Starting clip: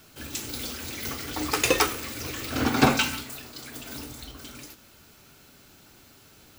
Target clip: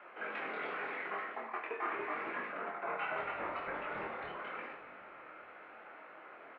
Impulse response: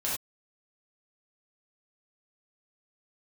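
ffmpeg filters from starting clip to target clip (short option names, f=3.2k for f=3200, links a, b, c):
-filter_complex "[0:a]highpass=f=530:t=q:w=0.5412,highpass=f=530:t=q:w=1.307,lowpass=f=2.2k:t=q:w=0.5176,lowpass=f=2.2k:t=q:w=0.7071,lowpass=f=2.2k:t=q:w=1.932,afreqshift=-70,asplit=6[a][b][c][d][e][f];[b]adelay=280,afreqshift=-54,volume=-15dB[g];[c]adelay=560,afreqshift=-108,volume=-20.5dB[h];[d]adelay=840,afreqshift=-162,volume=-26dB[i];[e]adelay=1120,afreqshift=-216,volume=-31.5dB[j];[f]adelay=1400,afreqshift=-270,volume=-37.1dB[k];[a][g][h][i][j][k]amix=inputs=6:normalize=0,areverse,acompressor=threshold=-44dB:ratio=16,areverse,flanger=delay=20:depth=6:speed=0.83,asplit=2[l][m];[1:a]atrim=start_sample=2205[n];[m][n]afir=irnorm=-1:irlink=0,volume=-9.5dB[o];[l][o]amix=inputs=2:normalize=0,volume=8.5dB"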